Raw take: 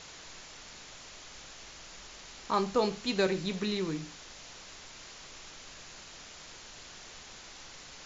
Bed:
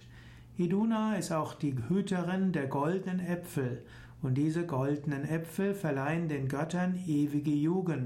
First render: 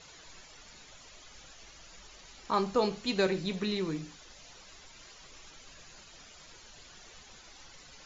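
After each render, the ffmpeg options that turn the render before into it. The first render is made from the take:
-af "afftdn=nr=11:nf=-50"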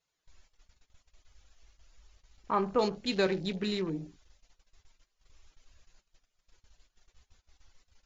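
-af "afwtdn=0.00708,agate=range=0.178:threshold=0.00112:ratio=16:detection=peak"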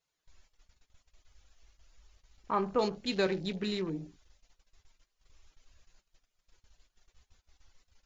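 -af "volume=0.841"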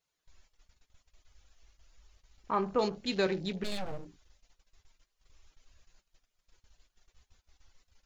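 -filter_complex "[0:a]asplit=3[s0][s1][s2];[s0]afade=t=out:st=3.63:d=0.02[s3];[s1]aeval=exprs='abs(val(0))':c=same,afade=t=in:st=3.63:d=0.02,afade=t=out:st=4.04:d=0.02[s4];[s2]afade=t=in:st=4.04:d=0.02[s5];[s3][s4][s5]amix=inputs=3:normalize=0"

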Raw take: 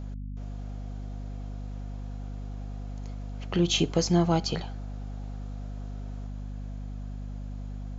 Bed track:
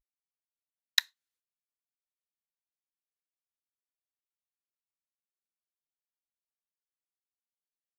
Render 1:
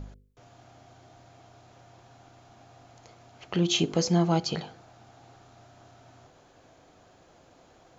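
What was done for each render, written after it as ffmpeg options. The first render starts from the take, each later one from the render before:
-af "bandreject=f=50:t=h:w=4,bandreject=f=100:t=h:w=4,bandreject=f=150:t=h:w=4,bandreject=f=200:t=h:w=4,bandreject=f=250:t=h:w=4,bandreject=f=300:t=h:w=4,bandreject=f=350:t=h:w=4,bandreject=f=400:t=h:w=4,bandreject=f=450:t=h:w=4,bandreject=f=500:t=h:w=4,bandreject=f=550:t=h:w=4,bandreject=f=600:t=h:w=4"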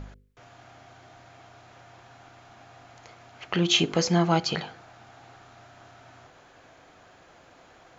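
-af "equalizer=f=1800:w=0.65:g=9"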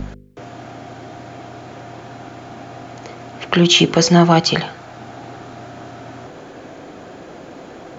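-filter_complex "[0:a]acrossover=split=160|490|2100[s0][s1][s2][s3];[s1]acompressor=mode=upward:threshold=0.0141:ratio=2.5[s4];[s0][s4][s2][s3]amix=inputs=4:normalize=0,alimiter=level_in=3.76:limit=0.891:release=50:level=0:latency=1"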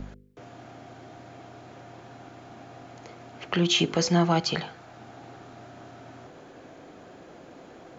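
-af "volume=0.282"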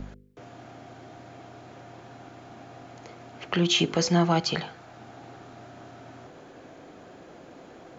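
-af anull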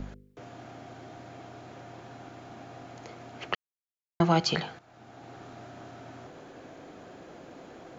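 -filter_complex "[0:a]asplit=4[s0][s1][s2][s3];[s0]atrim=end=3.55,asetpts=PTS-STARTPTS,afade=t=out:st=3.546:d=0.004:c=hsin[s4];[s1]atrim=start=3.55:end=4.2,asetpts=PTS-STARTPTS,volume=0[s5];[s2]atrim=start=4.2:end=4.79,asetpts=PTS-STARTPTS,afade=t=in:d=0.004:c=hsin,afade=t=out:st=0.586:d=0.004:c=hsin:silence=0.237137[s6];[s3]atrim=start=4.79,asetpts=PTS-STARTPTS,afade=t=in:d=0.65:silence=0.237137[s7];[s4][s5][s6][s7]concat=n=4:v=0:a=1"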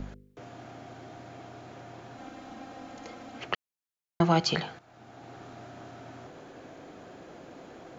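-filter_complex "[0:a]asettb=1/sr,asplit=3[s0][s1][s2];[s0]atrim=end=2.174[s3];[s1]atrim=start=2.17:end=3.4,asetpts=PTS-STARTPTS,afade=t=in:d=0.004:c=qsin,afade=t=out:st=1.226:d=0.004:c=qsin,aecho=1:1:3.8:0.73,atrim=end_sample=54243[s4];[s2]atrim=start=3.396[s5];[s3][s4]acrossfade=d=0.004:c1=hsin:c2=qsin[s6];[s6][s5]acrossfade=d=0.004:c1=qsin:c2=hsin"

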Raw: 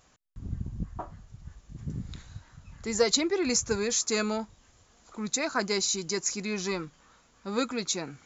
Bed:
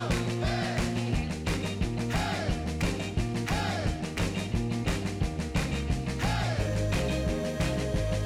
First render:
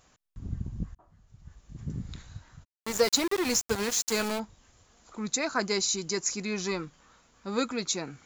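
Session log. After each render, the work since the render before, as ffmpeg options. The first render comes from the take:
-filter_complex "[0:a]asplit=3[s0][s1][s2];[s0]afade=t=out:st=2.63:d=0.02[s3];[s1]aeval=exprs='val(0)*gte(abs(val(0)),0.0376)':c=same,afade=t=in:st=2.63:d=0.02,afade=t=out:st=4.38:d=0.02[s4];[s2]afade=t=in:st=4.38:d=0.02[s5];[s3][s4][s5]amix=inputs=3:normalize=0,asplit=2[s6][s7];[s6]atrim=end=0.95,asetpts=PTS-STARTPTS,afade=t=out:st=0.946:d=0.004:c=hsin[s8];[s7]atrim=start=0.95,asetpts=PTS-STARTPTS,afade=t=in:d=0.85[s9];[s8][s9]concat=n=2:v=0:a=1"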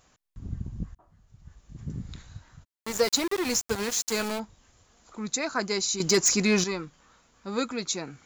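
-filter_complex "[0:a]asettb=1/sr,asplit=3[s0][s1][s2];[s0]atrim=end=6.004[s3];[s1]atrim=start=6:end=6.64,asetpts=PTS-STARTPTS,afade=t=in:d=0.004:c=qsin,afade=t=out:st=0.636:d=0.004:c=qsin,aeval=exprs='0.178*sin(PI/2*2.24*val(0)/0.178)':c=same[s4];[s2]atrim=start=6.636[s5];[s3][s4]acrossfade=d=0.004:c1=hsin:c2=qsin[s6];[s6][s5]acrossfade=d=0.004:c1=qsin:c2=hsin"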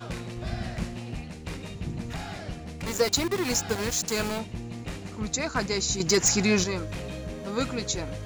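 -filter_complex "[1:a]volume=0.447[s0];[0:a][s0]amix=inputs=2:normalize=0"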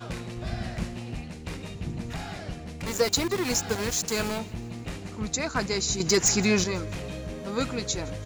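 -af "aecho=1:1:165|330|495|660:0.0708|0.0404|0.023|0.0131"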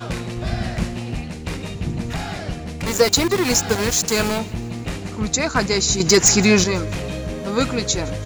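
-af "volume=2.66,alimiter=limit=0.891:level=0:latency=1"

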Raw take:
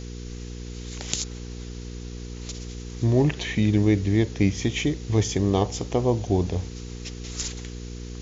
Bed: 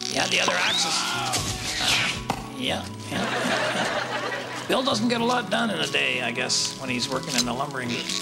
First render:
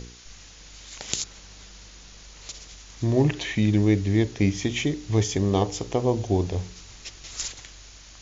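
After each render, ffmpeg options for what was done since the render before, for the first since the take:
-af "bandreject=f=60:t=h:w=4,bandreject=f=120:t=h:w=4,bandreject=f=180:t=h:w=4,bandreject=f=240:t=h:w=4,bandreject=f=300:t=h:w=4,bandreject=f=360:t=h:w=4,bandreject=f=420:t=h:w=4,bandreject=f=480:t=h:w=4"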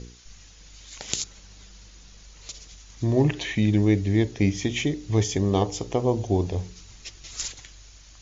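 -af "afftdn=nr=6:nf=-47"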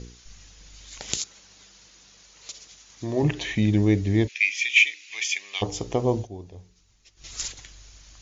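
-filter_complex "[0:a]asettb=1/sr,asplit=3[s0][s1][s2];[s0]atrim=end=1.174[s3];[s1]atrim=start=1.17:end=3.23,asetpts=PTS-STARTPTS,afade=t=in:d=0.004:c=qsin,afade=t=out:st=2.056:d=0.004:c=qsin,highpass=f=360:p=1[s4];[s2]atrim=start=3.226[s5];[s3][s4]acrossfade=d=0.004:c1=hsin:c2=qsin[s6];[s6][s5]acrossfade=d=0.004:c1=qsin:c2=hsin,asplit=3[s7][s8][s9];[s7]afade=t=out:st=4.27:d=0.02[s10];[s8]highpass=f=2400:t=q:w=8,afade=t=in:st=4.27:d=0.02,afade=t=out:st=5.61:d=0.02[s11];[s9]afade=t=in:st=5.61:d=0.02[s12];[s10][s11][s12]amix=inputs=3:normalize=0,asplit=3[s13][s14][s15];[s13]atrim=end=6.28,asetpts=PTS-STARTPTS,afade=t=out:st=6.15:d=0.13:c=qsin:silence=0.158489[s16];[s14]atrim=start=6.28:end=7.16,asetpts=PTS-STARTPTS,volume=0.158[s17];[s15]atrim=start=7.16,asetpts=PTS-STARTPTS,afade=t=in:d=0.13:c=qsin:silence=0.158489[s18];[s16][s17][s18]concat=n=3:v=0:a=1"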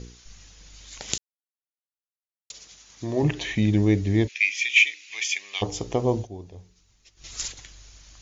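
-filter_complex "[0:a]asplit=3[s0][s1][s2];[s0]atrim=end=1.18,asetpts=PTS-STARTPTS,afade=t=out:st=1.176:d=0.004:c=hsin[s3];[s1]atrim=start=1.18:end=2.5,asetpts=PTS-STARTPTS,volume=0[s4];[s2]atrim=start=2.5,asetpts=PTS-STARTPTS,afade=t=in:d=0.004:c=hsin[s5];[s3][s4][s5]concat=n=3:v=0:a=1"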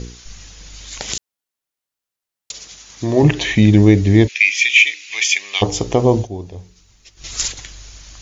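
-af "alimiter=level_in=3.35:limit=0.891:release=50:level=0:latency=1"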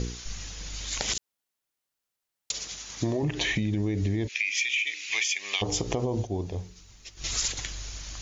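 -af "alimiter=limit=0.316:level=0:latency=1:release=94,acompressor=threshold=0.0631:ratio=10"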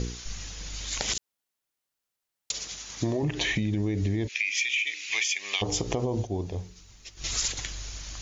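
-af anull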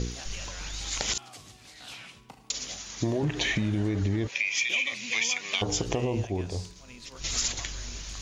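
-filter_complex "[1:a]volume=0.0794[s0];[0:a][s0]amix=inputs=2:normalize=0"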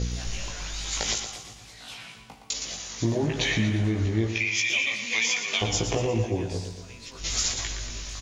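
-filter_complex "[0:a]asplit=2[s0][s1];[s1]adelay=18,volume=0.708[s2];[s0][s2]amix=inputs=2:normalize=0,aecho=1:1:117|234|351|468|585|702:0.376|0.192|0.0978|0.0499|0.0254|0.013"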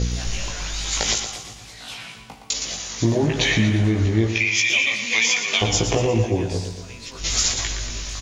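-af "volume=2"

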